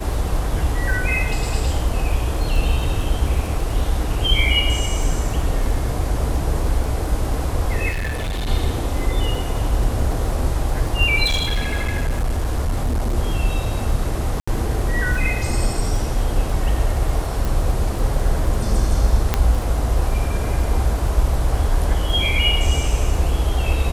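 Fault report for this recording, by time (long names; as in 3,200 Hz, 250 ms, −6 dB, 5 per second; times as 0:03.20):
surface crackle 18 per second −26 dBFS
0:07.89–0:08.49: clipping −20.5 dBFS
0:11.25–0:13.17: clipping −16 dBFS
0:14.40–0:14.47: drop-out 75 ms
0:17.45: click
0:19.34: click −3 dBFS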